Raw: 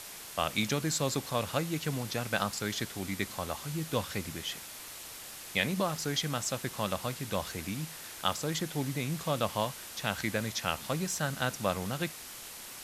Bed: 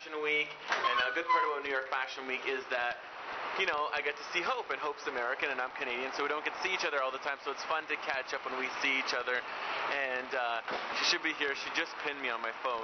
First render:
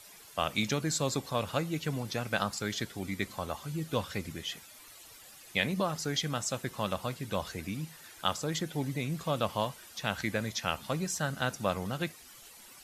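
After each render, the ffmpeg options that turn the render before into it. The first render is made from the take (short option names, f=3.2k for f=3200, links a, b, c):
-af "afftdn=nr=12:nf=-46"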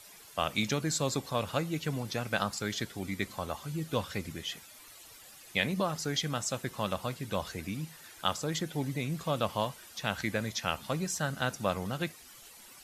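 -af anull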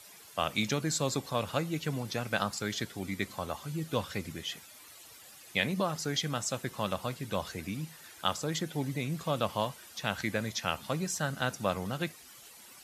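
-af "highpass=67"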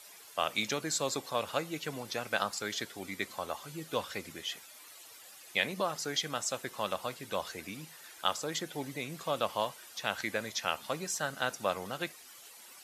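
-af "bass=f=250:g=-13,treble=f=4k:g=0"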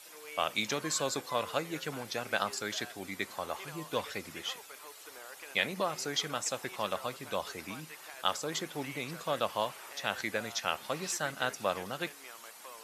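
-filter_complex "[1:a]volume=-16dB[a];[0:a][a]amix=inputs=2:normalize=0"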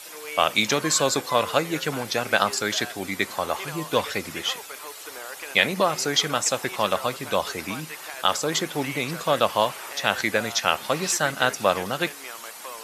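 -af "volume=11dB,alimiter=limit=-3dB:level=0:latency=1"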